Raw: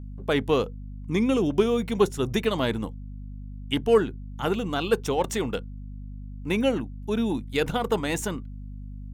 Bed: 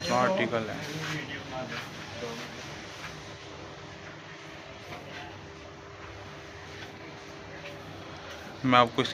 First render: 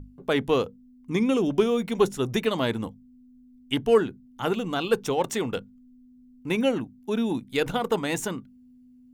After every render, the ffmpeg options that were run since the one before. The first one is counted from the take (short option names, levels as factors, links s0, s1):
-af "bandreject=f=50:t=h:w=6,bandreject=f=100:t=h:w=6,bandreject=f=150:t=h:w=6,bandreject=f=200:t=h:w=6"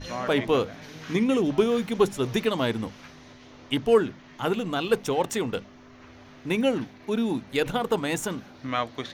-filter_complex "[1:a]volume=0.447[s0];[0:a][s0]amix=inputs=2:normalize=0"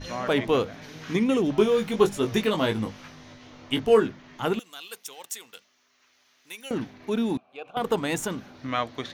-filter_complex "[0:a]asettb=1/sr,asplit=3[s0][s1][s2];[s0]atrim=end=1.584[s3];[s1]atrim=start=1.58:end=4.07,asetpts=PTS-STARTPTS,afade=t=in:d=0.004:c=qsin,afade=t=out:st=2.486:d=0.004:c=qsin,asplit=2[s4][s5];[s5]adelay=19,volume=0.562[s6];[s4][s6]amix=inputs=2:normalize=0,atrim=end_sample=109809[s7];[s2]atrim=start=4.066[s8];[s3][s7]acrossfade=d=0.004:c1=hsin:c2=qsin[s9];[s9][s8]acrossfade=d=0.004:c1=qsin:c2=hsin,asettb=1/sr,asplit=3[s10][s11][s12];[s10]atrim=end=4.594[s13];[s11]atrim=start=4.59:end=6.71,asetpts=PTS-STARTPTS,afade=t=in:d=0.004:c=qsin,afade=t=out:st=2.116:d=0.004:c=qsin,aderivative[s14];[s12]atrim=start=6.706[s15];[s13][s14]acrossfade=d=0.004:c1=hsin:c2=qsin[s16];[s16][s15]acrossfade=d=0.004:c1=qsin:c2=hsin,asettb=1/sr,asplit=3[s17][s18][s19];[s17]atrim=end=7.374[s20];[s18]atrim=start=7.37:end=7.77,asetpts=PTS-STARTPTS,afade=t=in:d=0.004:c=qsin,afade=t=out:st=0.396:d=0.004:c=qsin,asplit=3[s21][s22][s23];[s21]bandpass=f=730:t=q:w=8,volume=1[s24];[s22]bandpass=f=1090:t=q:w=8,volume=0.501[s25];[s23]bandpass=f=2440:t=q:w=8,volume=0.355[s26];[s24][s25][s26]amix=inputs=3:normalize=0[s27];[s19]atrim=start=7.766[s28];[s20][s27]acrossfade=d=0.004:c1=hsin:c2=qsin[s29];[s29][s28]acrossfade=d=0.004:c1=qsin:c2=hsin"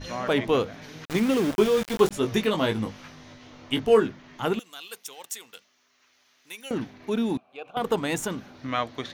-filter_complex "[0:a]asettb=1/sr,asplit=3[s0][s1][s2];[s0]atrim=end=1.054[s3];[s1]atrim=start=1.05:end=2.11,asetpts=PTS-STARTPTS,afade=t=in:d=0.004:c=qsin,afade=t=out:st=1.056:d=0.004:c=qsin,aeval=exprs='val(0)*gte(abs(val(0)),0.0376)':c=same[s4];[s2]atrim=start=2.106[s5];[s3][s4]acrossfade=d=0.004:c1=hsin:c2=qsin[s6];[s6][s5]acrossfade=d=0.004:c1=qsin:c2=hsin"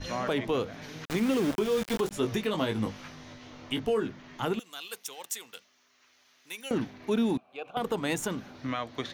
-filter_complex "[0:a]alimiter=limit=0.126:level=0:latency=1:release=224,acrossover=split=420|3000[s0][s1][s2];[s1]acompressor=threshold=0.0398:ratio=6[s3];[s0][s3][s2]amix=inputs=3:normalize=0"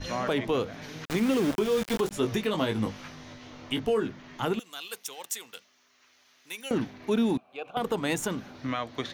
-af "volume=1.19"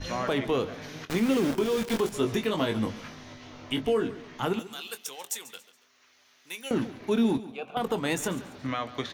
-filter_complex "[0:a]asplit=2[s0][s1];[s1]adelay=22,volume=0.251[s2];[s0][s2]amix=inputs=2:normalize=0,aecho=1:1:140|280|420:0.158|0.0539|0.0183"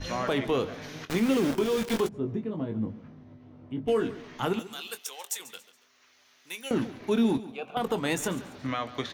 -filter_complex "[0:a]asplit=3[s0][s1][s2];[s0]afade=t=out:st=2.07:d=0.02[s3];[s1]bandpass=f=150:t=q:w=0.76,afade=t=in:st=2.07:d=0.02,afade=t=out:st=3.87:d=0.02[s4];[s2]afade=t=in:st=3.87:d=0.02[s5];[s3][s4][s5]amix=inputs=3:normalize=0,asettb=1/sr,asplit=3[s6][s7][s8];[s6]atrim=end=4.994[s9];[s7]atrim=start=4.99:end=5.4,asetpts=PTS-STARTPTS,afade=t=in:d=0.004:c=qsin,afade=t=out:st=0.406:d=0.004:c=qsin,highpass=460[s10];[s8]atrim=start=5.396[s11];[s9][s10]acrossfade=d=0.004:c1=hsin:c2=qsin[s12];[s12][s11]acrossfade=d=0.004:c1=qsin:c2=hsin"